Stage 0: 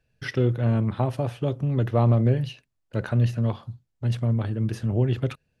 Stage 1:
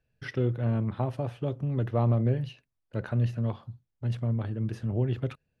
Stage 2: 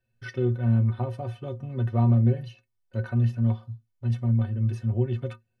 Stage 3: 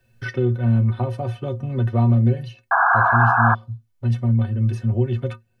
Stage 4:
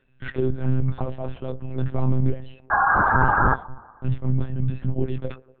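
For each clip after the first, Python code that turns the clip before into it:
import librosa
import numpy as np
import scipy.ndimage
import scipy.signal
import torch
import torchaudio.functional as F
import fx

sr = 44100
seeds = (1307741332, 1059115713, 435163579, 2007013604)

y1 = fx.high_shelf(x, sr, hz=4200.0, db=-7.5)
y1 = y1 * 10.0 ** (-5.0 / 20.0)
y2 = fx.stiff_resonator(y1, sr, f0_hz=110.0, decay_s=0.22, stiffness=0.03)
y2 = y2 * 10.0 ** (8.0 / 20.0)
y3 = fx.spec_paint(y2, sr, seeds[0], shape='noise', start_s=2.71, length_s=0.84, low_hz=660.0, high_hz=1700.0, level_db=-19.0)
y3 = fx.band_squash(y3, sr, depth_pct=40)
y3 = y3 * 10.0 ** (4.0 / 20.0)
y4 = fx.echo_wet_bandpass(y3, sr, ms=123, feedback_pct=63, hz=570.0, wet_db=-19.0)
y4 = fx.lpc_monotone(y4, sr, seeds[1], pitch_hz=130.0, order=10)
y4 = y4 * 10.0 ** (-2.5 / 20.0)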